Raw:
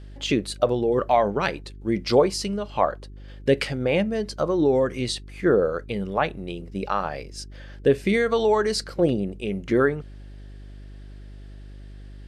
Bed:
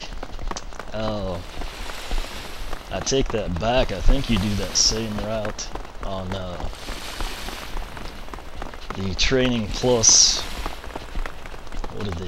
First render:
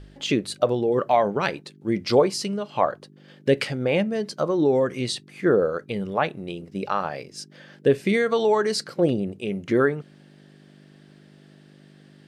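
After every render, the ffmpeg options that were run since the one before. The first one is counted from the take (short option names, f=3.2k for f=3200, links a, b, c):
-af "bandreject=f=50:t=h:w=4,bandreject=f=100:t=h:w=4"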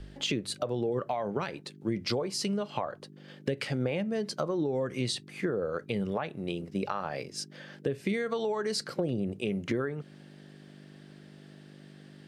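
-filter_complex "[0:a]alimiter=limit=-14.5dB:level=0:latency=1:release=280,acrossover=split=130[a][b];[b]acompressor=threshold=-28dB:ratio=6[c];[a][c]amix=inputs=2:normalize=0"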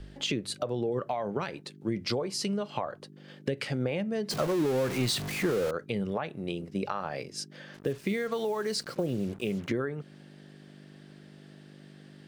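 -filter_complex "[0:a]asettb=1/sr,asplit=3[a][b][c];[a]atrim=end=4.304[d];[b]atrim=start=4.3:end=5.71,asetpts=PTS-STARTPTS,afade=t=in:d=0.004:c=qsin,afade=t=out:st=1.406:d=0.004:c=qsin,aeval=exprs='val(0)+0.5*0.0299*sgn(val(0))':c=same[e];[c]atrim=start=5.706[f];[d][e]acrossfade=d=0.004:c1=hsin:c2=qsin[g];[g][f]acrossfade=d=0.004:c1=qsin:c2=hsin,asettb=1/sr,asplit=3[h][i][j];[h]atrim=end=7.744[k];[i]atrim=start=7.74:end=9.69,asetpts=PTS-STARTPTS,afade=t=in:d=0.004:c=qsin,afade=t=out:st=1.946:d=0.004:c=qsin,acrusher=bits=7:mix=0:aa=0.5[l];[j]atrim=start=9.686[m];[k][l]acrossfade=d=0.004:c1=hsin:c2=qsin[n];[n][m]acrossfade=d=0.004:c1=qsin:c2=hsin"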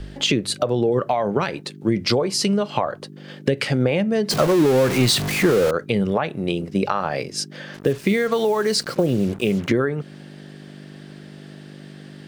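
-af "volume=11dB"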